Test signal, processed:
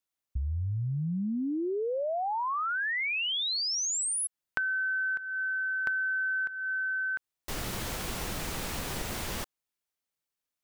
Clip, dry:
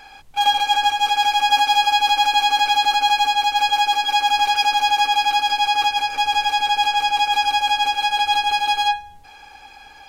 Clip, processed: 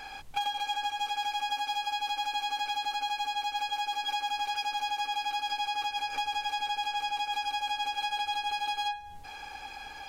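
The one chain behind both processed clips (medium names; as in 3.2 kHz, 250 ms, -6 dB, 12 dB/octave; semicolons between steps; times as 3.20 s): compression 12:1, threshold -29 dBFS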